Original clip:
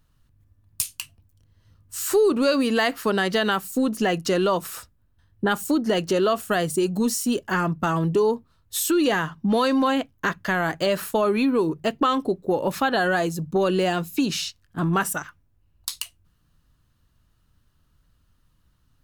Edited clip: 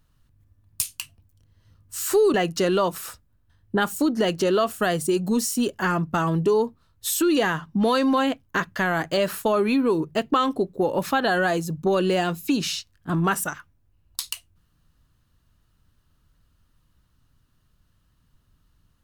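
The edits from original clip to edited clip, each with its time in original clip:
0:02.34–0:04.03: remove

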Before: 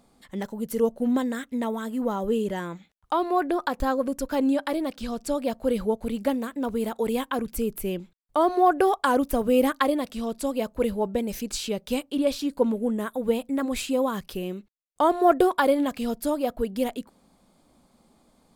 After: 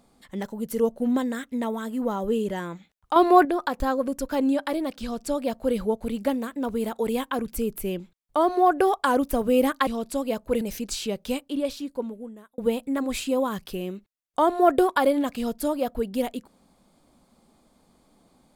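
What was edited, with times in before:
0:03.16–0:03.45: clip gain +8 dB
0:09.87–0:10.16: remove
0:10.90–0:11.23: remove
0:11.80–0:13.20: fade out

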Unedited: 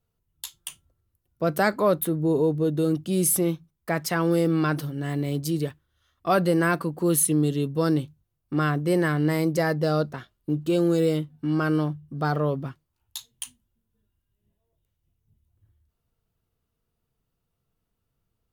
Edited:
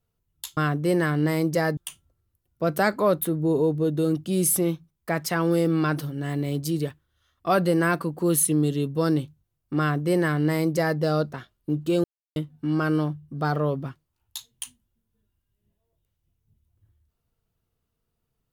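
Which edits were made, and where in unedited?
0:08.59–0:09.79: duplicate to 0:00.57
0:10.84–0:11.16: silence

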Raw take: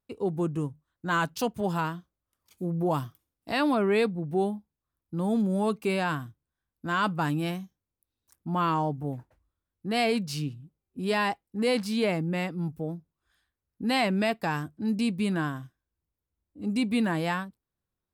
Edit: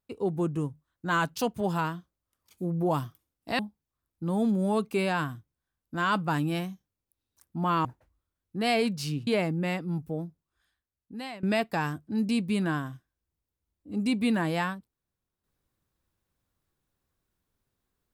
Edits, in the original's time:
0:03.59–0:04.50: remove
0:08.76–0:09.15: remove
0:10.57–0:11.97: remove
0:12.93–0:14.13: fade out, to −20.5 dB

